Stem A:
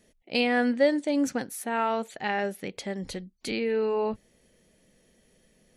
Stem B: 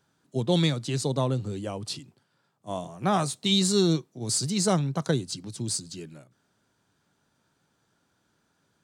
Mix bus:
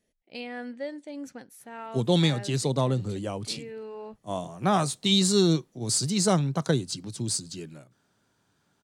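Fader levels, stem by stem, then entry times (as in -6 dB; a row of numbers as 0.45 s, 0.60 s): -13.0 dB, +1.0 dB; 0.00 s, 1.60 s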